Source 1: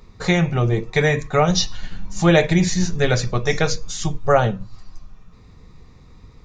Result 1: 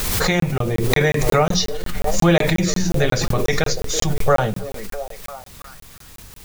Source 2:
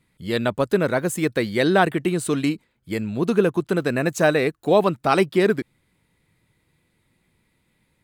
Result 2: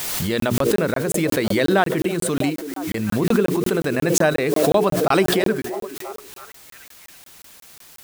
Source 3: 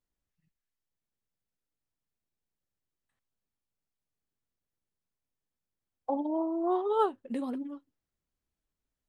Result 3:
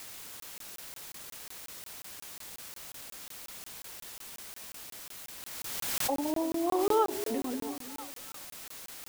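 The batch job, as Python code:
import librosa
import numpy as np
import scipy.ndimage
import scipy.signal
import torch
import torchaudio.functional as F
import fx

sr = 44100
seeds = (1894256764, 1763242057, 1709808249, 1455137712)

p1 = fx.hum_notches(x, sr, base_hz=60, count=7)
p2 = fx.echo_stepped(p1, sr, ms=328, hz=350.0, octaves=0.7, feedback_pct=70, wet_db=-10)
p3 = fx.quant_dither(p2, sr, seeds[0], bits=6, dither='triangular')
p4 = p2 + (p3 * 10.0 ** (-5.0 / 20.0))
p5 = fx.buffer_crackle(p4, sr, first_s=0.4, period_s=0.18, block=1024, kind='zero')
p6 = fx.pre_swell(p5, sr, db_per_s=23.0)
y = p6 * 10.0 ** (-4.5 / 20.0)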